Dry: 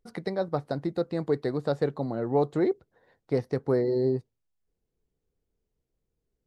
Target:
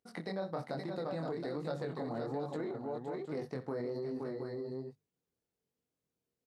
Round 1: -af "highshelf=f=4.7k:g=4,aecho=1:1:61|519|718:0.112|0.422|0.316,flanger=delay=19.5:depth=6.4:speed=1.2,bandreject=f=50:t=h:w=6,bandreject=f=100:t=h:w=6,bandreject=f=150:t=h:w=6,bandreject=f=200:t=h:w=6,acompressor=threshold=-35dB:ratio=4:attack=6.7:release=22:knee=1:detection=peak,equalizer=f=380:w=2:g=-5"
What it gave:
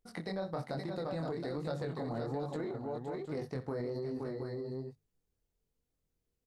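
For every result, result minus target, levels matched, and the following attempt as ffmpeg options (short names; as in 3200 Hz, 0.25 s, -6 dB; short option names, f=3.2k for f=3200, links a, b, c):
125 Hz band +3.0 dB; 8000 Hz band +2.5 dB
-af "highshelf=f=4.7k:g=4,aecho=1:1:61|519|718:0.112|0.422|0.316,flanger=delay=19.5:depth=6.4:speed=1.2,bandreject=f=50:t=h:w=6,bandreject=f=100:t=h:w=6,bandreject=f=150:t=h:w=6,bandreject=f=200:t=h:w=6,acompressor=threshold=-35dB:ratio=4:attack=6.7:release=22:knee=1:detection=peak,highpass=150,equalizer=f=380:w=2:g=-5"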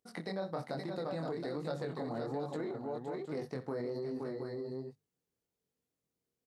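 8000 Hz band +3.0 dB
-af "aecho=1:1:61|519|718:0.112|0.422|0.316,flanger=delay=19.5:depth=6.4:speed=1.2,bandreject=f=50:t=h:w=6,bandreject=f=100:t=h:w=6,bandreject=f=150:t=h:w=6,bandreject=f=200:t=h:w=6,acompressor=threshold=-35dB:ratio=4:attack=6.7:release=22:knee=1:detection=peak,highpass=150,equalizer=f=380:w=2:g=-5"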